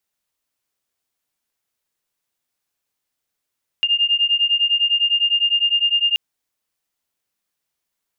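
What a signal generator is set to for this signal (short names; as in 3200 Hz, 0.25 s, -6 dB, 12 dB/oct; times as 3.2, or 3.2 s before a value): beating tones 2810 Hz, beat 9.9 Hz, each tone -18 dBFS 2.33 s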